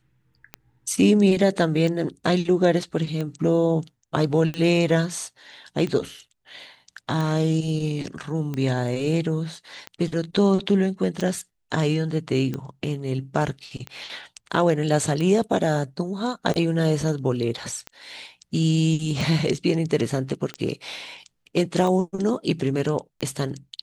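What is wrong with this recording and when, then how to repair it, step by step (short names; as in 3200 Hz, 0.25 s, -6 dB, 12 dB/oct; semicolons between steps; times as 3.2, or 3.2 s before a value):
tick 45 rpm -17 dBFS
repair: de-click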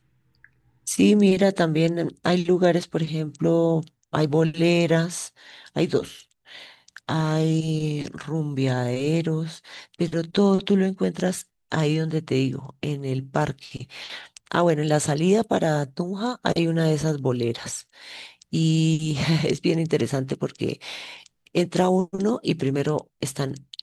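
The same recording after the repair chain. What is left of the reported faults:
none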